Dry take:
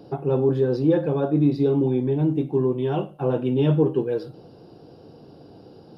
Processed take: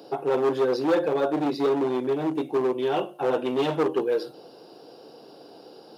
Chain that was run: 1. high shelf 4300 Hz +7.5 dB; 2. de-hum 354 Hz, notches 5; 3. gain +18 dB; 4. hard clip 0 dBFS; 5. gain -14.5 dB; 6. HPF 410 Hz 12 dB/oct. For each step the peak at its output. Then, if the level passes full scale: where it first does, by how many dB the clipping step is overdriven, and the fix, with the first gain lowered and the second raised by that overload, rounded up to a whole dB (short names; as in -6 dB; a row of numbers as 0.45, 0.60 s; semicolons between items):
-9.0, -9.0, +9.0, 0.0, -14.5, -11.5 dBFS; step 3, 9.0 dB; step 3 +9 dB, step 5 -5.5 dB